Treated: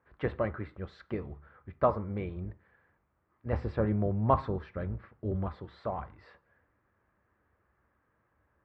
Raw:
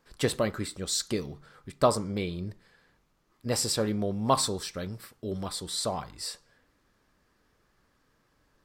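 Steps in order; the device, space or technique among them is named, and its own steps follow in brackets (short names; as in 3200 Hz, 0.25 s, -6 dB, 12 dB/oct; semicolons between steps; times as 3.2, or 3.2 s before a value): sub-octave bass pedal (octaver, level -5 dB; speaker cabinet 67–2000 Hz, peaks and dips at 71 Hz +8 dB, 160 Hz -7 dB, 260 Hz -6 dB, 430 Hz -3 dB); 3.53–5.63 low shelf 450 Hz +6 dB; gain -2.5 dB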